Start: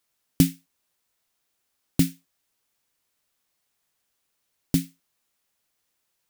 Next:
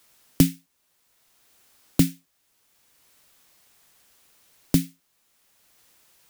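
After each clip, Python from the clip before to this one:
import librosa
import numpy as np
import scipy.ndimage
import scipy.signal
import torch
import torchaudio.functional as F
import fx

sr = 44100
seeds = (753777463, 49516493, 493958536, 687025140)

y = fx.band_squash(x, sr, depth_pct=40)
y = y * librosa.db_to_amplitude(4.0)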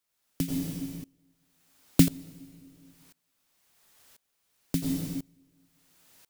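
y = fx.rev_plate(x, sr, seeds[0], rt60_s=1.4, hf_ratio=0.9, predelay_ms=75, drr_db=2.5)
y = fx.tremolo_decay(y, sr, direction='swelling', hz=0.96, depth_db=24)
y = y * librosa.db_to_amplitude(1.5)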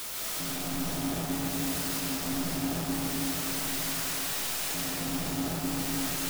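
y = np.sign(x) * np.sqrt(np.mean(np.square(x)))
y = y + 10.0 ** (-6.0 / 20.0) * np.pad(y, (int(594 * sr / 1000.0), 0))[:len(y)]
y = fx.rev_freeverb(y, sr, rt60_s=2.6, hf_ratio=0.8, predelay_ms=100, drr_db=-4.5)
y = y * librosa.db_to_amplitude(-3.0)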